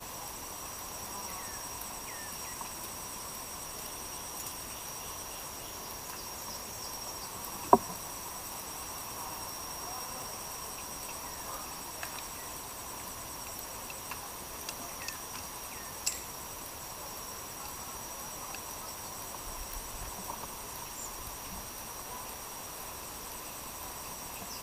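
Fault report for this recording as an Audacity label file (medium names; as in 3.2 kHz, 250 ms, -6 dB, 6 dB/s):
10.220000	10.220000	pop
19.720000	19.720000	pop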